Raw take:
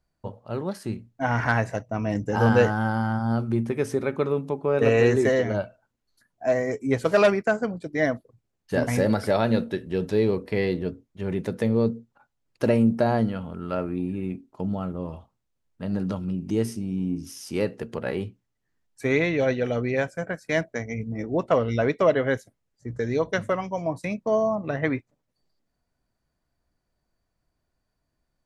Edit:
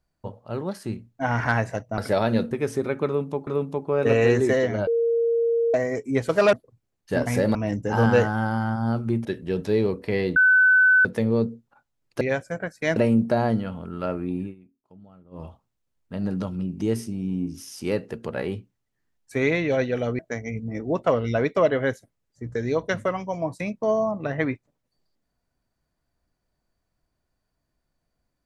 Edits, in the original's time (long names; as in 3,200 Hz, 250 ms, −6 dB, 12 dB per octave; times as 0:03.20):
0:01.98–0:03.68: swap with 0:09.16–0:09.69
0:04.23–0:04.64: repeat, 2 plays
0:05.63–0:06.50: beep over 464 Hz −18.5 dBFS
0:07.29–0:08.14: remove
0:10.80–0:11.49: beep over 1,510 Hz −13 dBFS
0:14.12–0:15.12: duck −21 dB, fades 0.12 s
0:19.88–0:20.63: move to 0:12.65